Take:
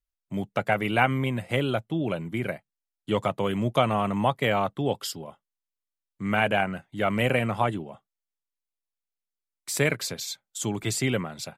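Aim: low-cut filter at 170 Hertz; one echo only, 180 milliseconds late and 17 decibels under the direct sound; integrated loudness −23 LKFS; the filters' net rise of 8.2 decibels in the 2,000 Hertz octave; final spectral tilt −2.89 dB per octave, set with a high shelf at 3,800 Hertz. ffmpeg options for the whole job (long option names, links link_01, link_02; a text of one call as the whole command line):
ffmpeg -i in.wav -af "highpass=170,equalizer=frequency=2000:width_type=o:gain=8.5,highshelf=frequency=3800:gain=6.5,aecho=1:1:180:0.141" out.wav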